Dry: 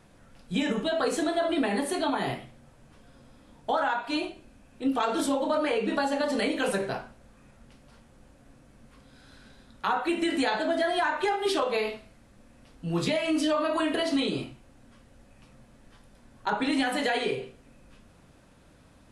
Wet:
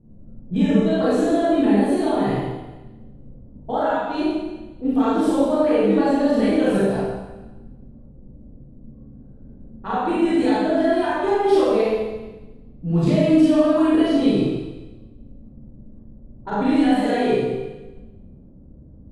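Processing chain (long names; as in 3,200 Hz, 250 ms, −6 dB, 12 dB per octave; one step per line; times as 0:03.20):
low-pass that shuts in the quiet parts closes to 350 Hz, open at −24.5 dBFS
tilt shelving filter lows +9 dB, about 660 Hz
four-comb reverb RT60 1.1 s, combs from 28 ms, DRR −8 dB
level −2 dB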